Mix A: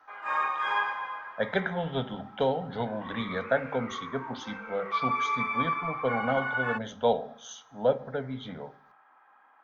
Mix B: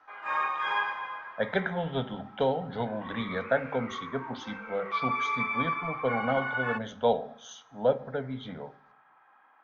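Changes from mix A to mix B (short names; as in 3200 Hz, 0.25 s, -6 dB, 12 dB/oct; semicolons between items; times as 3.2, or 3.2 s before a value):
background: send on; master: add air absorption 54 m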